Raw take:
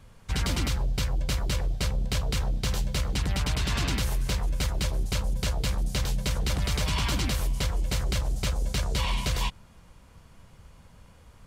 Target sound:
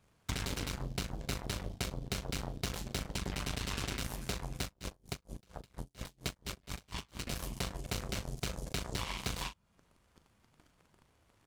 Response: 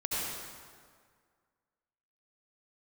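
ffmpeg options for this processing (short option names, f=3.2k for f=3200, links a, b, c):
-filter_complex "[0:a]highpass=44,acompressor=threshold=-43dB:ratio=4,flanger=delay=4.6:depth=6.2:regen=77:speed=0.93:shape=triangular,aeval=exprs='0.0224*(cos(1*acos(clip(val(0)/0.0224,-1,1)))-cos(1*PI/2))+0.00355*(cos(7*acos(clip(val(0)/0.0224,-1,1)))-cos(7*PI/2))':c=same,asplit=2[a][b];[b]adelay=39,volume=-11dB[c];[a][c]amix=inputs=2:normalize=0,asettb=1/sr,asplit=3[d][e][f];[d]atrim=end=4.644[g];[e]atrim=start=4.64:end=7.27,asetpts=PTS-STARTPTS,afade=t=in:d=0.004:c=qsin,afade=t=out:st=2.626:d=0.004:c=qsin,aeval=exprs='val(0)*pow(10,-34*(0.5-0.5*cos(2*PI*4.3*n/s))/20)':c=same[h];[f]atrim=start=7.266[i];[g][h]acrossfade=d=0.004:c1=hsin:c2=qsin[j];[j][i]acrossfade=d=0.004:c1=qsin:c2=hsin,volume=12.5dB"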